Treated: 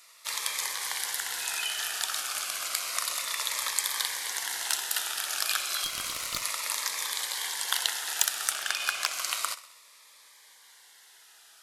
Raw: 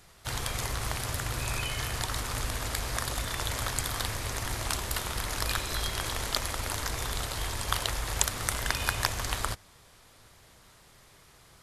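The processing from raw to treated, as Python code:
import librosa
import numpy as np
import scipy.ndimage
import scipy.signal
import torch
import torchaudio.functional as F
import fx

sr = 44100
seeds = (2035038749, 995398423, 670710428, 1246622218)

y = fx.high_shelf(x, sr, hz=9700.0, db=-10.5, at=(8.51, 9.13))
y = np.clip(10.0 ** (12.5 / 20.0) * y, -1.0, 1.0) / 10.0 ** (12.5 / 20.0)
y = scipy.signal.sosfilt(scipy.signal.butter(2, 1100.0, 'highpass', fs=sr, output='sos'), y)
y = fx.tube_stage(y, sr, drive_db=25.0, bias=0.45, at=(5.84, 6.43))
y = fx.echo_feedback(y, sr, ms=64, feedback_pct=59, wet_db=-17.0)
y = fx.notch_cascade(y, sr, direction='falling', hz=0.31)
y = y * librosa.db_to_amplitude(5.0)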